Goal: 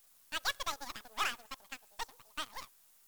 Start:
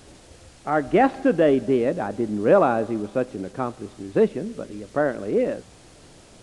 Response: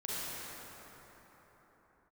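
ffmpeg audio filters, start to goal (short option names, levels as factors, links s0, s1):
-af "asetrate=92169,aresample=44100,aderivative,aeval=exprs='0.119*(cos(1*acos(clip(val(0)/0.119,-1,1)))-cos(1*PI/2))+0.0119*(cos(7*acos(clip(val(0)/0.119,-1,1)))-cos(7*PI/2))+0.0119*(cos(8*acos(clip(val(0)/0.119,-1,1)))-cos(8*PI/2))':c=same,volume=0.75"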